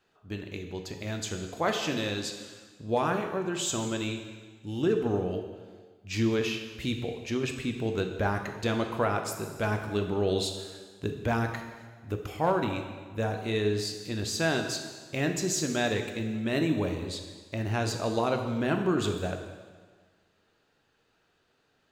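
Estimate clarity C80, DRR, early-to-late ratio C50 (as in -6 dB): 8.5 dB, 4.5 dB, 7.0 dB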